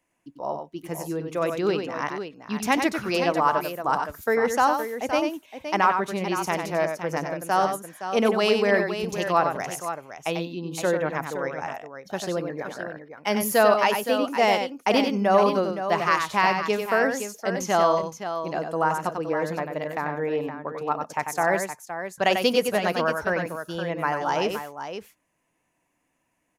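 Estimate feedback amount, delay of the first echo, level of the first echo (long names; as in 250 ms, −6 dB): repeats not evenly spaced, 94 ms, −6.5 dB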